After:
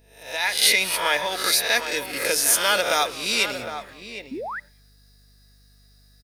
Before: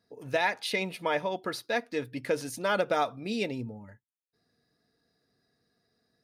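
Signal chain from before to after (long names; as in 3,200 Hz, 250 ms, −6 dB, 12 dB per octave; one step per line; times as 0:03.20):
peak hold with a rise ahead of every peak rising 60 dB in 0.58 s
first-order pre-emphasis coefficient 0.9
on a send: echo with shifted repeats 198 ms, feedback 39%, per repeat −130 Hz, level −19.5 dB
on the sum: automatic gain control gain up to 15 dB
low-shelf EQ 240 Hz −10.5 dB
mains hum 50 Hz, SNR 32 dB
slap from a distant wall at 130 metres, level −9 dB
sound drawn into the spectrogram rise, 0:04.31–0:04.60, 230–2,100 Hz −36 dBFS
level +5 dB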